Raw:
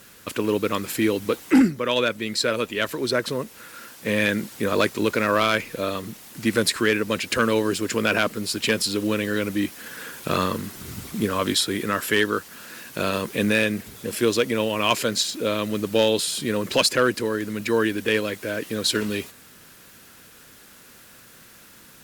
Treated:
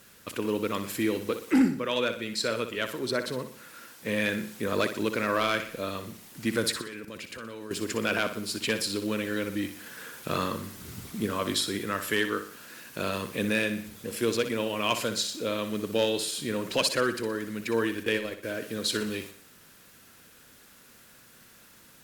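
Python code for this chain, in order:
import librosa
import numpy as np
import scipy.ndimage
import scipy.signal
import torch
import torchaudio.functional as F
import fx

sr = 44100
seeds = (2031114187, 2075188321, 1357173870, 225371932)

y = fx.level_steps(x, sr, step_db=17, at=(6.81, 7.71))
y = fx.transient(y, sr, attack_db=2, sustain_db=-11, at=(18.03, 18.54))
y = fx.echo_feedback(y, sr, ms=61, feedback_pct=44, wet_db=-10)
y = y * 10.0 ** (-6.5 / 20.0)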